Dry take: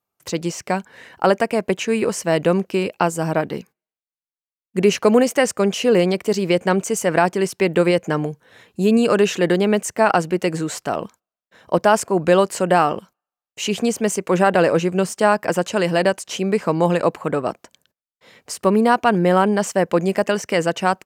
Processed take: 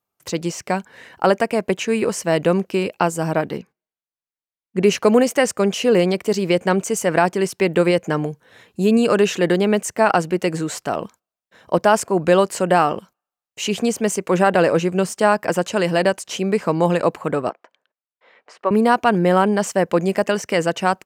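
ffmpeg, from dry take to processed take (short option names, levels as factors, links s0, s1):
-filter_complex "[0:a]asettb=1/sr,asplit=3[s0][s1][s2];[s0]atrim=end=3.574[s3];[s1]atrim=start=3.57:end=4.84,asetpts=PTS-STARTPTS,afade=t=in:d=0.004:c=qsin,afade=t=out:st=1.266:d=0.004:c=qsin,lowpass=f=2700:p=1[s4];[s2]atrim=start=4.836[s5];[s3][s4]acrossfade=d=0.004:c1=hsin:c2=qsin[s6];[s6][s5]acrossfade=d=0.004:c1=qsin:c2=hsin,asettb=1/sr,asplit=3[s7][s8][s9];[s7]atrim=end=17.494[s10];[s8]atrim=start=17.49:end=18.71,asetpts=PTS-STARTPTS,afade=t=in:d=0.004:c=qsin,afade=t=out:st=1.216:d=0.004:c=qsin,highpass=530,lowpass=2100[s11];[s9]atrim=start=18.706[s12];[s10][s11]acrossfade=d=0.004:c1=hsin:c2=qsin[s13];[s13][s12]acrossfade=d=0.004:c1=qsin:c2=hsin"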